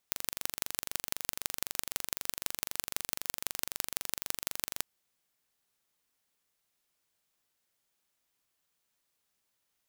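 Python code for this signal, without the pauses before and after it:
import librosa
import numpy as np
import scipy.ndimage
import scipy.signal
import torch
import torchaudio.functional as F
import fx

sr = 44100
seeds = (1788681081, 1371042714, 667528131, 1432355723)

y = fx.impulse_train(sr, length_s=4.72, per_s=23.9, accent_every=4, level_db=-2.0)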